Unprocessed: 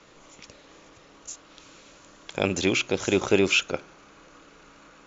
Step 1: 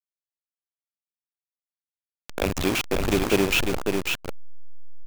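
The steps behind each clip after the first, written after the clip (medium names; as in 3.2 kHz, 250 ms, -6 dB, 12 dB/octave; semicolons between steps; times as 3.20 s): send-on-delta sampling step -20 dBFS; on a send: delay 547 ms -4.5 dB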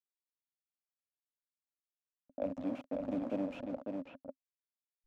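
two resonant band-passes 390 Hz, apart 1.1 oct; level-controlled noise filter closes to 380 Hz, open at -31.5 dBFS; trim -3.5 dB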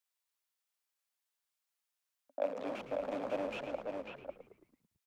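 high-pass 690 Hz 12 dB/octave; on a send: frequency-shifting echo 111 ms, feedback 53%, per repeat -77 Hz, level -11 dB; on the sum: trim +8 dB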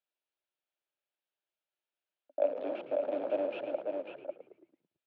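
cabinet simulation 210–3400 Hz, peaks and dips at 220 Hz -7 dB, 340 Hz +9 dB, 600 Hz +7 dB, 1.1 kHz -8 dB, 2 kHz -6 dB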